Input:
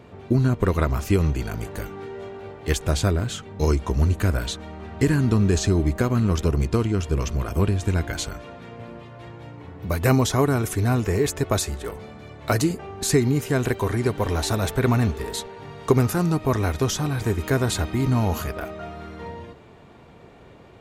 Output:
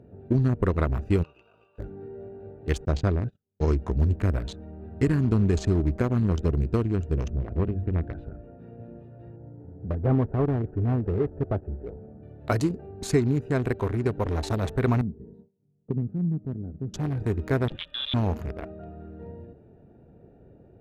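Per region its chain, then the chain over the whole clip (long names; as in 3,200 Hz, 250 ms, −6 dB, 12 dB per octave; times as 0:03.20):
0:01.22–0:01.78: spectral envelope flattened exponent 0.6 + pair of resonant band-passes 1,800 Hz, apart 1.2 octaves + comb filter 1.9 ms, depth 37%
0:02.85–0:03.70: low-pass filter 7,000 Hz 24 dB per octave + noise gate −29 dBFS, range −42 dB
0:07.29–0:08.59: high-frequency loss of the air 400 metres + mains-hum notches 50/100/150/200/250 Hz
0:09.36–0:12.23: variable-slope delta modulation 16 kbit/s + low-pass filter 1,100 Hz
0:15.01–0:16.94: resonant band-pass 180 Hz, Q 2.2 + noise gate with hold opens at −36 dBFS, closes at −41 dBFS
0:17.68–0:18.14: high-pass filter 200 Hz + voice inversion scrambler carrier 3,700 Hz
whole clip: adaptive Wiener filter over 41 samples; low-pass filter 3,300 Hz 6 dB per octave; level −2.5 dB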